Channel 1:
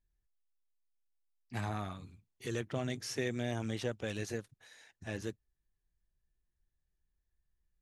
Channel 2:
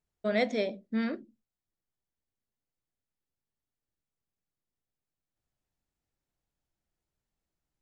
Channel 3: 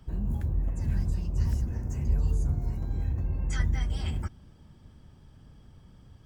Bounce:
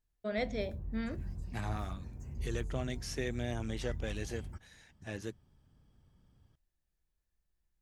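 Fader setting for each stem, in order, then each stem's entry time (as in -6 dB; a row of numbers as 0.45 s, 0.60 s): -1.5 dB, -7.0 dB, -13.5 dB; 0.00 s, 0.00 s, 0.30 s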